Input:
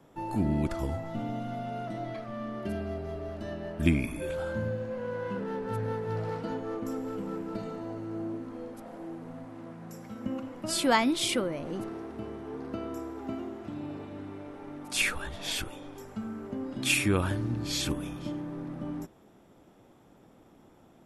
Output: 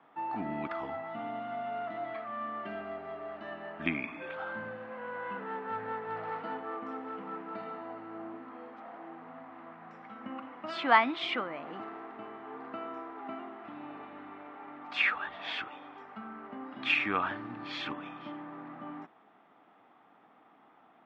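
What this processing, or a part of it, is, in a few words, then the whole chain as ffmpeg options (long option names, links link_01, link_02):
phone earpiece: -af "highpass=370,equalizer=frequency=370:width_type=q:width=4:gain=-8,equalizer=frequency=540:width_type=q:width=4:gain=-9,equalizer=frequency=760:width_type=q:width=4:gain=5,equalizer=frequency=1200:width_type=q:width=4:gain=7,equalizer=frequency=1900:width_type=q:width=4:gain=4,lowpass=frequency=3100:width=0.5412,lowpass=frequency=3100:width=1.3066"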